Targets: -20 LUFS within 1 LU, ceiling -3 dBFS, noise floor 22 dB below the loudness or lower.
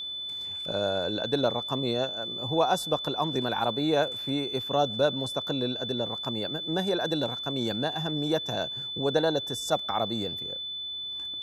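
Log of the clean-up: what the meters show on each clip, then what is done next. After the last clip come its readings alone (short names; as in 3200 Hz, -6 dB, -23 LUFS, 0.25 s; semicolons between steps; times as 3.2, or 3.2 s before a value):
steady tone 3500 Hz; tone level -33 dBFS; loudness -28.5 LUFS; peak -11.0 dBFS; loudness target -20.0 LUFS
-> notch 3500 Hz, Q 30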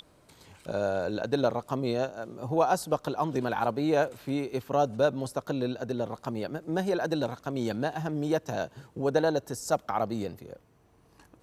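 steady tone none; loudness -30.0 LUFS; peak -11.5 dBFS; loudness target -20.0 LUFS
-> gain +10 dB; limiter -3 dBFS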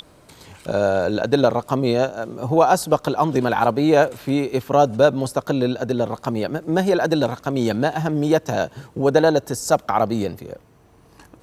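loudness -20.0 LUFS; peak -3.0 dBFS; noise floor -52 dBFS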